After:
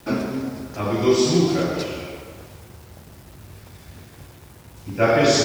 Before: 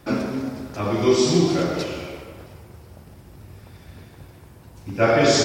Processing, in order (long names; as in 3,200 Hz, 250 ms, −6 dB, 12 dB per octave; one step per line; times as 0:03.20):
bit-depth reduction 8 bits, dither none